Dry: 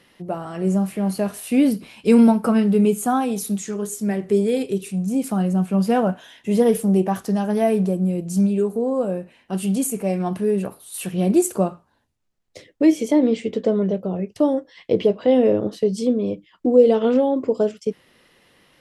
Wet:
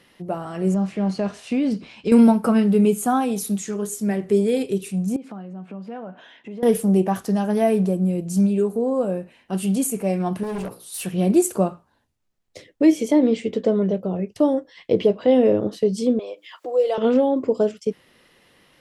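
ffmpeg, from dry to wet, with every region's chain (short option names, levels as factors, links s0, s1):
-filter_complex "[0:a]asettb=1/sr,asplit=3[s0][s1][s2];[s0]atrim=end=0.744[s3];[s1]atrim=start=0.74:end=2.12,asetpts=PTS-STARTPTS,afade=t=in:d=0.004:c=qsin,afade=t=out:st=1.376:d=0.004:c=qsin,lowpass=f=6600:w=0.5412,lowpass=f=6600:w=1.3066,acompressor=threshold=0.141:ratio=6:attack=3.2:release=140:knee=1:detection=peak[s4];[s2]atrim=start=2.116[s5];[s3][s4]acrossfade=d=0.004:c1=hsin:c2=qsin[s6];[s6][s5]acrossfade=d=0.004:c1=qsin:c2=hsin,asettb=1/sr,asplit=3[s7][s8][s9];[s7]atrim=end=5.164[s10];[s8]atrim=start=5.16:end=6.63,asetpts=PTS-STARTPTS,afade=t=in:d=0.004:c=qsin,afade=t=out:st=1.466:d=0.004:c=qsin,acompressor=threshold=0.0251:ratio=5:attack=3.2:release=140:knee=1:detection=peak,highpass=180,lowpass=2900[s11];[s9]atrim=start=6.626[s12];[s10][s11]acrossfade=d=0.004:c1=hsin:c2=qsin[s13];[s13][s12]acrossfade=d=0.004:c1=qsin:c2=hsin,asettb=1/sr,asplit=3[s14][s15][s16];[s14]atrim=end=10.434[s17];[s15]atrim=start=10.43:end=11.03,asetpts=PTS-STARTPTS,afade=t=in:d=0.004:c=qsin,afade=t=out:st=0.596:d=0.004:c=qsin,equalizer=f=5200:t=o:w=0.62:g=7,bandreject=f=60:t=h:w=6,bandreject=f=120:t=h:w=6,bandreject=f=180:t=h:w=6,bandreject=f=240:t=h:w=6,bandreject=f=300:t=h:w=6,bandreject=f=360:t=h:w=6,bandreject=f=420:t=h:w=6,bandreject=f=480:t=h:w=6,bandreject=f=540:t=h:w=6,asoftclip=type=hard:threshold=0.0531[s18];[s16]atrim=start=11.026[s19];[s17][s18]acrossfade=d=0.004:c1=hsin:c2=qsin[s20];[s20][s19]acrossfade=d=0.004:c1=qsin:c2=hsin,asettb=1/sr,asplit=3[s21][s22][s23];[s21]atrim=end=16.194[s24];[s22]atrim=start=16.19:end=16.98,asetpts=PTS-STARTPTS,afade=t=in:d=0.004:c=qsin,afade=t=out:st=0.786:d=0.004:c=qsin,highpass=f=560:w=0.5412,highpass=f=560:w=1.3066,acompressor=mode=upward:threshold=0.0398:ratio=2.5:attack=3.2:release=140:knee=2.83:detection=peak[s25];[s23]atrim=start=16.976[s26];[s24][s25]acrossfade=d=0.004:c1=hsin:c2=qsin[s27];[s27][s26]acrossfade=d=0.004:c1=qsin:c2=hsin"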